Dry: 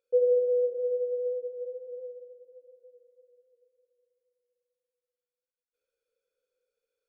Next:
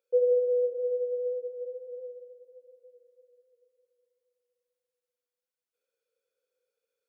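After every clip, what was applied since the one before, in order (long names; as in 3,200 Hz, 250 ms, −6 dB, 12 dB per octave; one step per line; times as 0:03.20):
high-pass filter 280 Hz 12 dB per octave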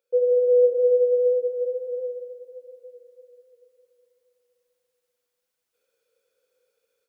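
automatic gain control gain up to 9 dB
level +2 dB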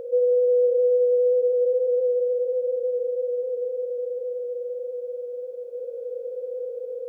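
compressor on every frequency bin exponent 0.2
level −4 dB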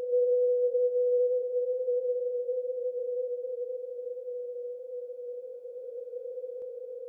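backwards echo 464 ms −6 dB
level −8 dB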